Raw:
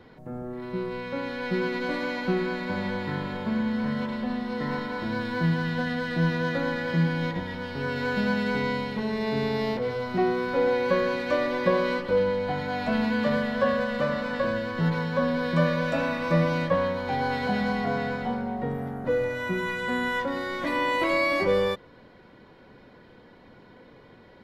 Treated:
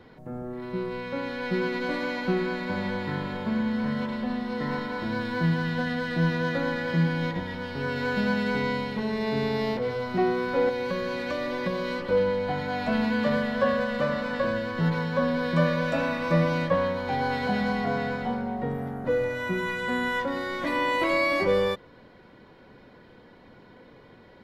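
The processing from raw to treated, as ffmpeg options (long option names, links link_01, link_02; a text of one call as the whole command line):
ffmpeg -i in.wav -filter_complex "[0:a]asettb=1/sr,asplit=3[link_01][link_02][link_03];[link_01]atrim=end=10.694[link_04];[link_02]atrim=start=10.69:end=12.02,asetpts=PTS-STARTPTS,afade=type=in:duration=0.004:curve=qsin,afade=type=out:start_time=1.326:duration=0.004:curve=qsin,acrossover=split=210|3000[link_05][link_06][link_07];[link_06]acompressor=threshold=-27dB:ratio=6:attack=3.2:release=140:knee=2.83:detection=peak[link_08];[link_05][link_08][link_07]amix=inputs=3:normalize=0[link_09];[link_03]atrim=start=12.016[link_10];[link_04][link_09]acrossfade=duration=0.004:curve1=hsin:curve2=qsin[link_11];[link_11][link_10]acrossfade=duration=0.004:curve1=qsin:curve2=hsin" out.wav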